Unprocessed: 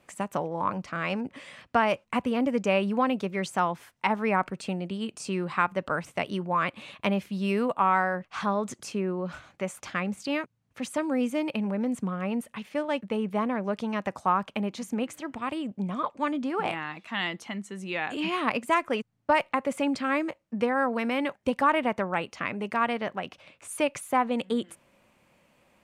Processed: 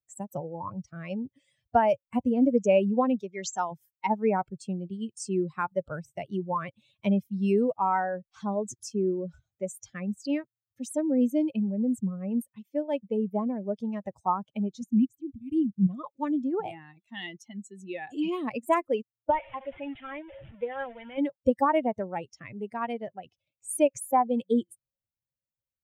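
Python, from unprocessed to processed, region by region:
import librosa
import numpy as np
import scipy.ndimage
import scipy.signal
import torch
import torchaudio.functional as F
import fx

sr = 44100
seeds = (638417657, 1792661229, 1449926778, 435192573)

y = fx.chain(x, sr, fx.brickwall_lowpass(high_hz=7700.0),
    fx.tilt_eq(slope=2.0), at=(3.22, 3.72))
y = fx.chain(y, sr, fx.low_shelf(hz=390.0, db=7.0),
    fx.transient(attack_db=-5, sustain_db=-10),
    fx.brickwall_bandstop(low_hz=420.0, high_hz=2100.0), at=(14.81, 15.87))
y = fx.chain(y, sr, fx.delta_mod(bps=16000, step_db=-25.0),
    fx.low_shelf(hz=500.0, db=-11.0), at=(19.3, 21.18))
y = fx.bin_expand(y, sr, power=2.0)
y = fx.band_shelf(y, sr, hz=2200.0, db=-11.0, octaves=2.3)
y = y * 10.0 ** (7.0 / 20.0)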